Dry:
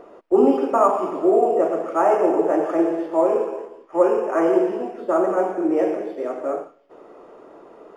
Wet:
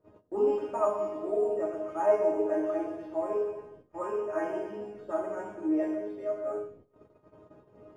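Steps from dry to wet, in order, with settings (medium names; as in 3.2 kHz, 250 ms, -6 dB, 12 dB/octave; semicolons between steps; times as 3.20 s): chord resonator G#3 fifth, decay 0.31 s; band noise 68–500 Hz -62 dBFS; gate -57 dBFS, range -18 dB; on a send: bucket-brigade echo 82 ms, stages 1024, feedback 39%, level -20.5 dB; on the sum: trim +4 dB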